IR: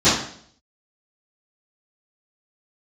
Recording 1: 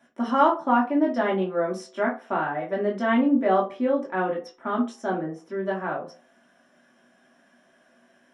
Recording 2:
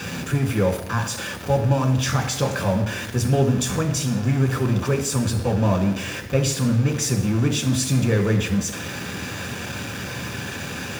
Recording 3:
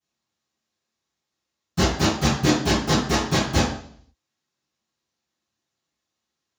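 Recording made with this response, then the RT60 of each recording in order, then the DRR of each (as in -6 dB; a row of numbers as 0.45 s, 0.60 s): 3; 0.40 s, 0.85 s, 0.60 s; -4.0 dB, 3.5 dB, -17.5 dB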